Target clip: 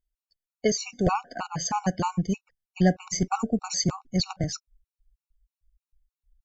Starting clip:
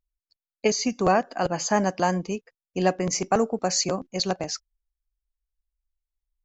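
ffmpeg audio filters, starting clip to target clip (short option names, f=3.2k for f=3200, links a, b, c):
-af "asubboost=boost=8:cutoff=170,afftfilt=real='re*gt(sin(2*PI*3.2*pts/sr)*(1-2*mod(floor(b*sr/1024/740),2)),0)':imag='im*gt(sin(2*PI*3.2*pts/sr)*(1-2*mod(floor(b*sr/1024/740),2)),0)':win_size=1024:overlap=0.75"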